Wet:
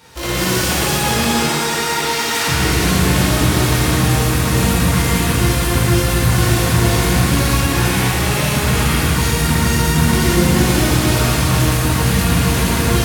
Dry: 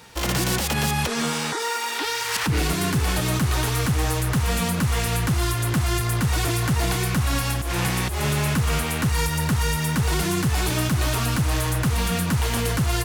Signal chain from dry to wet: shimmer reverb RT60 3.4 s, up +7 st, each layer -8 dB, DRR -9.5 dB; gain -2.5 dB

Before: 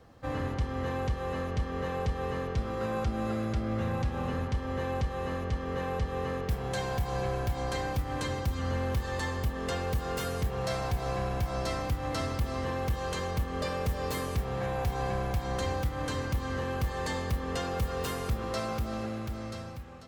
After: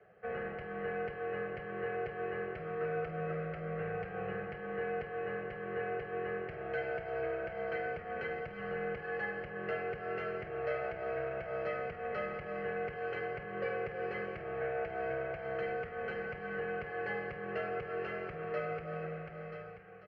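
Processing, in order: mistuned SSB -60 Hz 220–3400 Hz; fixed phaser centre 990 Hz, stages 6; doubler 49 ms -13.5 dB

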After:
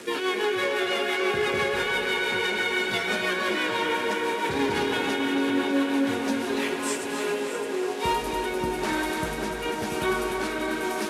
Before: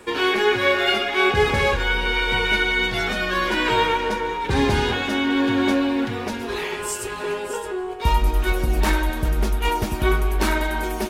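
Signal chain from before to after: delta modulation 64 kbps, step -31.5 dBFS; HPF 180 Hz 12 dB/oct; limiter -16.5 dBFS, peak gain reduction 9 dB; rotary speaker horn 6 Hz, later 1 Hz, at 6.43; tape echo 0.28 s, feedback 88%, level -5.5 dB, low-pass 5100 Hz

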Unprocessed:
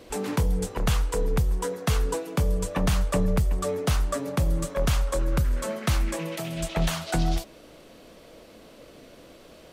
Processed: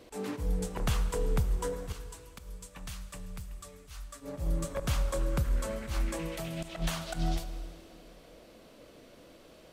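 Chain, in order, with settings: 1.92–4.21 passive tone stack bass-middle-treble 5-5-5; auto swell 0.1 s; plate-style reverb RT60 2.7 s, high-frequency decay 0.95×, DRR 10.5 dB; gain -6 dB

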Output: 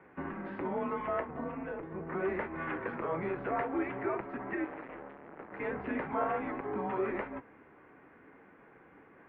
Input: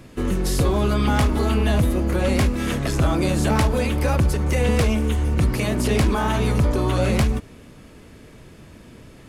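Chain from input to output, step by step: 1.2–2.07 tilt -2 dB/oct; limiter -15 dBFS, peak gain reduction 11.5 dB; 4.64–5.6 hard clip -31.5 dBFS, distortion -11 dB; flange 0.44 Hz, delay 8.4 ms, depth 4.9 ms, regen -60%; mistuned SSB -170 Hz 460–2200 Hz

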